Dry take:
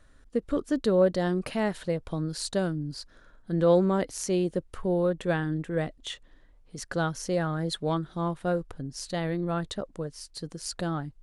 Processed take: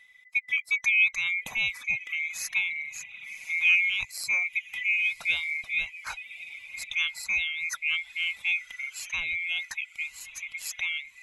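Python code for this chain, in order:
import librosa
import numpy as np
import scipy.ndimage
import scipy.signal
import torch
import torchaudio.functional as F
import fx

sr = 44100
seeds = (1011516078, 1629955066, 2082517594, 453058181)

y = fx.band_swap(x, sr, width_hz=2000)
y = fx.peak_eq(y, sr, hz=360.0, db=-14.5, octaves=0.58)
y = fx.echo_diffused(y, sr, ms=1134, feedback_pct=57, wet_db=-15.0)
y = fx.dereverb_blind(y, sr, rt60_s=0.76)
y = fx.band_squash(y, sr, depth_pct=40, at=(2.7, 3.65))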